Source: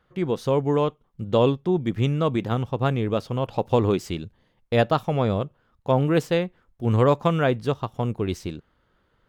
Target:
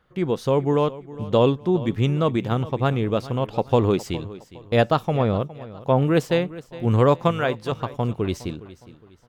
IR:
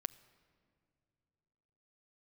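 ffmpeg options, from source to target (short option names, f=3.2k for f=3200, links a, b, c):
-filter_complex "[0:a]asettb=1/sr,asplit=3[a][b][c];[a]atrim=end=5.174[d];[b]atrim=start=5.17:end=6.02,asetpts=PTS-STARTPTS,afade=t=in:d=0.004:c=qsin,afade=t=out:st=0.846:d=0.004:c=qsin,acrossover=split=3800[e][f];[f]acompressor=threshold=-59dB:ratio=4:attack=1:release=60[g];[e][g]amix=inputs=2:normalize=0[h];[c]atrim=start=6.016[i];[d][h]acrossfade=d=0.004:c1=hsin:c2=qsin[j];[j][i]acrossfade=d=0.004:c1=qsin:c2=hsin,asettb=1/sr,asplit=3[k][l][m];[k]atrim=end=7.314[n];[l]atrim=start=7.31:end=7.72,asetpts=PTS-STARTPTS,afade=t=in:d=0.004:c=qsin,afade=t=out:st=0.406:d=0.004:c=qsin,lowshelf=f=420:g=-9[o];[m]atrim=start=7.716[p];[n][o]acrossfade=d=0.004:c1=hsin:c2=qsin[q];[q][p]acrossfade=d=0.004:c1=qsin:c2=hsin,aecho=1:1:412|824|1236:0.133|0.048|0.0173,volume=1.5dB"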